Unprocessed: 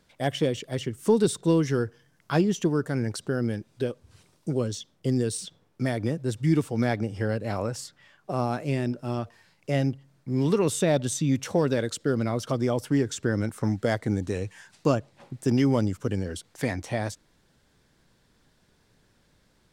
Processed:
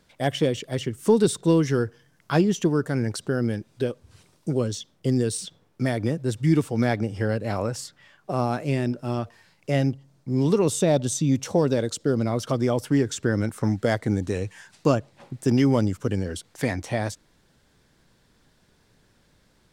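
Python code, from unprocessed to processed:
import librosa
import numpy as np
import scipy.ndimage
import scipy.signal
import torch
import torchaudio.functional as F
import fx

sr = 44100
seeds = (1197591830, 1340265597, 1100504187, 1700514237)

y = fx.curve_eq(x, sr, hz=(850.0, 1700.0, 6100.0, 11000.0), db=(0, -6, 1, -2), at=(9.92, 12.32))
y = y * 10.0 ** (2.5 / 20.0)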